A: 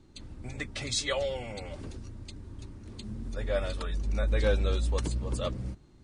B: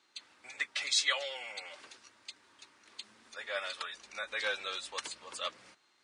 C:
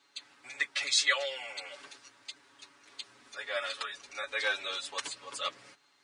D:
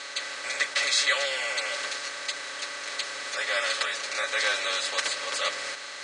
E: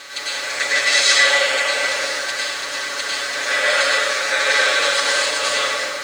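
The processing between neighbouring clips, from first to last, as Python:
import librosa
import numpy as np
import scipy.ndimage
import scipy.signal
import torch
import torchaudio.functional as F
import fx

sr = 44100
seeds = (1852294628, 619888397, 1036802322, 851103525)

y1 = scipy.signal.sosfilt(scipy.signal.butter(2, 1400.0, 'highpass', fs=sr, output='sos'), x)
y1 = fx.high_shelf(y1, sr, hz=7600.0, db=-12.0)
y1 = y1 * 10.0 ** (5.5 / 20.0)
y2 = y1 + 0.93 * np.pad(y1, (int(7.1 * sr / 1000.0), 0))[:len(y1)]
y3 = fx.bin_compress(y2, sr, power=0.4)
y4 = np.sign(y3) * np.maximum(np.abs(y3) - 10.0 ** (-50.5 / 20.0), 0.0)
y4 = fx.rev_plate(y4, sr, seeds[0], rt60_s=1.7, hf_ratio=0.6, predelay_ms=85, drr_db=-8.0)
y4 = y4 * 10.0 ** (3.0 / 20.0)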